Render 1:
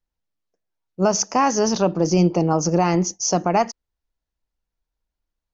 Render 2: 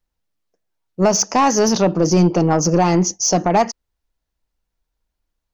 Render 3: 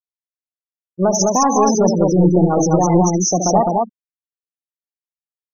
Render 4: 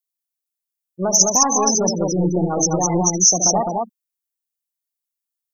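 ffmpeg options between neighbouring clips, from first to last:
-af "asoftclip=type=tanh:threshold=0.251,volume=1.88"
-af "aeval=exprs='val(0)+0.0251*sin(2*PI*12000*n/s)':c=same,aecho=1:1:72.89|166.2|207:0.447|0.282|0.794,afftfilt=real='re*gte(hypot(re,im),0.251)':imag='im*gte(hypot(re,im),0.251)':win_size=1024:overlap=0.75,volume=0.891"
-af "crystalizer=i=5:c=0,volume=0.473"

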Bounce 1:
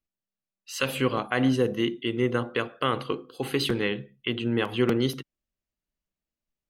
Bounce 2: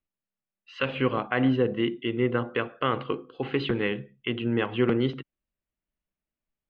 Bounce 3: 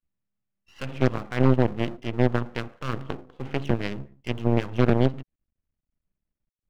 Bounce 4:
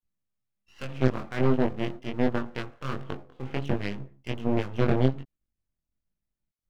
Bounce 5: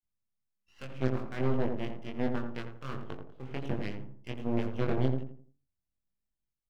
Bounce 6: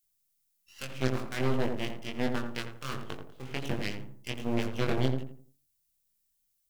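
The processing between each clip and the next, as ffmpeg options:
-af "lowpass=f=3000:w=0.5412,lowpass=f=3000:w=1.3066"
-af "bass=f=250:g=13,treble=f=4000:g=-14,aeval=exprs='0.562*(cos(1*acos(clip(val(0)/0.562,-1,1)))-cos(1*PI/2))+0.0501*(cos(6*acos(clip(val(0)/0.562,-1,1)))-cos(6*PI/2))+0.0891*(cos(8*acos(clip(val(0)/0.562,-1,1)))-cos(8*PI/2))':c=same,aeval=exprs='max(val(0),0)':c=same"
-af "flanger=delay=20:depth=3.4:speed=1.3"
-filter_complex "[0:a]asplit=2[s0][s1];[s1]adelay=85,lowpass=f=930:p=1,volume=0.631,asplit=2[s2][s3];[s3]adelay=85,lowpass=f=930:p=1,volume=0.37,asplit=2[s4][s5];[s5]adelay=85,lowpass=f=930:p=1,volume=0.37,asplit=2[s6][s7];[s7]adelay=85,lowpass=f=930:p=1,volume=0.37,asplit=2[s8][s9];[s9]adelay=85,lowpass=f=930:p=1,volume=0.37[s10];[s0][s2][s4][s6][s8][s10]amix=inputs=6:normalize=0,volume=0.447"
-af "crystalizer=i=6:c=0"

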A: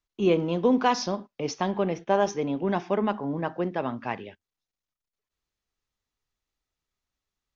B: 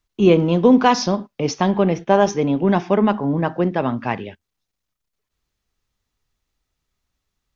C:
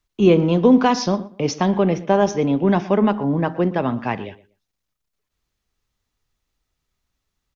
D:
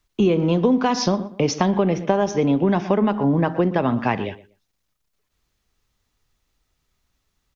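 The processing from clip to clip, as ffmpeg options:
-af "bass=f=250:g=5,treble=f=4000:g=0,volume=2.37"
-filter_complex "[0:a]acrossover=split=460[s0][s1];[s1]acompressor=threshold=0.0891:ratio=1.5[s2];[s0][s2]amix=inputs=2:normalize=0,asplit=2[s3][s4];[s4]adelay=120,lowpass=f=3000:p=1,volume=0.126,asplit=2[s5][s6];[s6]adelay=120,lowpass=f=3000:p=1,volume=0.21[s7];[s3][s5][s7]amix=inputs=3:normalize=0"
-af "acompressor=threshold=0.1:ratio=6,volume=1.78"

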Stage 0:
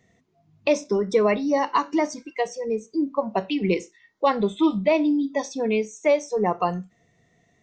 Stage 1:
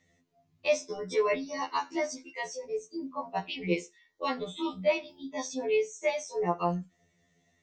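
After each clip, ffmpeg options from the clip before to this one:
-filter_complex "[0:a]acrossover=split=2200[s0][s1];[s1]acontrast=32[s2];[s0][s2]amix=inputs=2:normalize=0,afftfilt=real='re*2*eq(mod(b,4),0)':imag='im*2*eq(mod(b,4),0)':win_size=2048:overlap=0.75,volume=0.531"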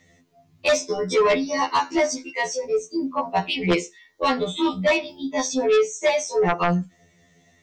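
-af "aeval=exprs='0.211*sin(PI/2*2.51*val(0)/0.211)':c=same"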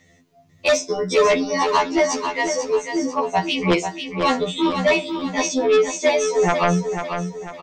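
-af "aecho=1:1:493|986|1479|1972|2465:0.422|0.173|0.0709|0.0291|0.0119,volume=1.26"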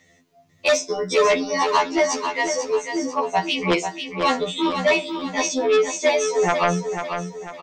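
-af "lowshelf=f=240:g=-7.5"

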